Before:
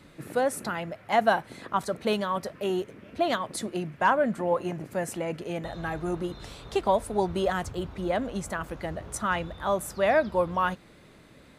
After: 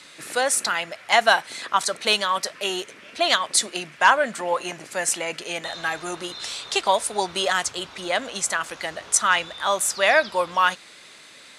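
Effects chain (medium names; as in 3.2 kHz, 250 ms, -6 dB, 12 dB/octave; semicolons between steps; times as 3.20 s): frequency weighting ITU-R 468; trim +6 dB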